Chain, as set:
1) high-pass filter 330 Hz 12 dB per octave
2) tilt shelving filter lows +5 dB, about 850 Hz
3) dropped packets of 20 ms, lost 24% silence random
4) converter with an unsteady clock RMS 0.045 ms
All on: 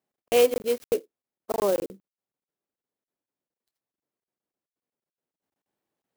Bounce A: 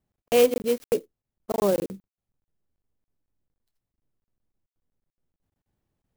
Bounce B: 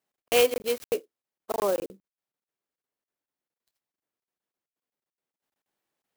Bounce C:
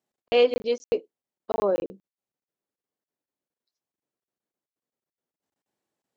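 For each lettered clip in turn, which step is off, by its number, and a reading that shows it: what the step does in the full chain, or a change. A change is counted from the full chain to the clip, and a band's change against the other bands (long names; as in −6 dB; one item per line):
1, 125 Hz band +7.5 dB
2, change in integrated loudness −1.5 LU
4, 4 kHz band +1.5 dB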